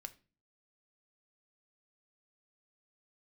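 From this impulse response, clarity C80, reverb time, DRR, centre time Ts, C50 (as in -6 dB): 24.0 dB, 0.35 s, 9.0 dB, 4 ms, 18.5 dB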